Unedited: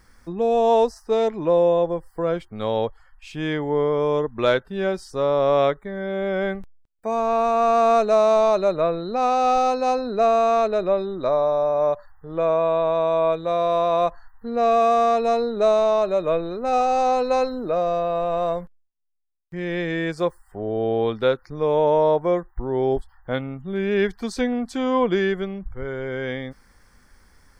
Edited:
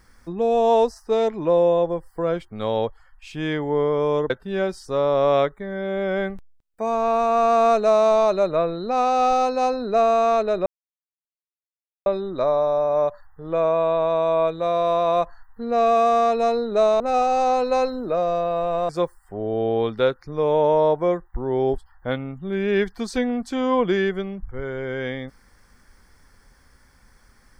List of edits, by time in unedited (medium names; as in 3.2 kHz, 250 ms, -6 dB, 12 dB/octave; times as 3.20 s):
4.30–4.55 s: delete
10.91 s: insert silence 1.40 s
15.85–16.59 s: delete
18.48–20.12 s: delete